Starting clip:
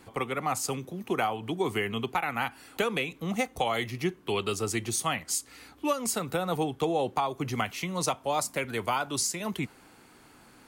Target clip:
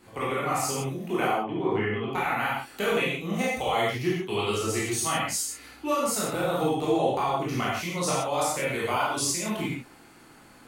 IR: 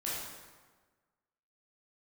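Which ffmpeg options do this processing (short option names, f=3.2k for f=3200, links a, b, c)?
-filter_complex "[0:a]asettb=1/sr,asplit=3[a][b][c];[a]atrim=end=1.264[d];[b]atrim=start=1.26:end=2.11,asetpts=PTS-STARTPTS,afade=t=in:d=0.004:c=qsin,afade=t=out:st=0.846:d=0.004:c=qsin,lowpass=2k[e];[c]atrim=start=2.106[f];[d][e]acrossfade=d=0.004:c1=hsin:c2=qsin[g];[g][f]acrossfade=d=0.004:c1=qsin:c2=hsin[h];[1:a]atrim=start_sample=2205,afade=t=out:st=0.23:d=0.01,atrim=end_sample=10584[i];[h][i]afir=irnorm=-1:irlink=0"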